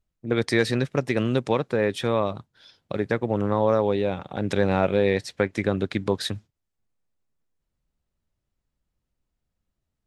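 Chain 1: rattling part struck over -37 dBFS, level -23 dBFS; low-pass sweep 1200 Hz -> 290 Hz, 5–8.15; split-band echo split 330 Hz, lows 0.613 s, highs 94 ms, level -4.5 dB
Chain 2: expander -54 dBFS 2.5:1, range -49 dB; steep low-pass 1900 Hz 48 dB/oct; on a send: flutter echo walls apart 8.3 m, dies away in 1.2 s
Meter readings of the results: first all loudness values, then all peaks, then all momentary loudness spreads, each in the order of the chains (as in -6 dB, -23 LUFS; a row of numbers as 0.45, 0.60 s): -22.5, -21.5 LUFS; -3.5, -5.5 dBFS; 15, 10 LU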